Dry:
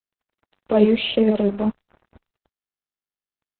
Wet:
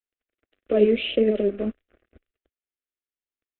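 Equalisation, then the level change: LPF 3000 Hz 24 dB/oct; fixed phaser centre 380 Hz, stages 4; 0.0 dB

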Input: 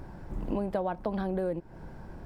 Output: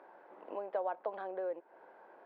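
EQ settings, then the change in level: HPF 470 Hz 24 dB/oct; air absorption 500 m; -1.5 dB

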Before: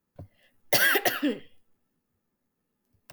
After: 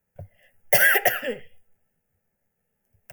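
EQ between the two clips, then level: fixed phaser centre 1100 Hz, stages 6; +6.0 dB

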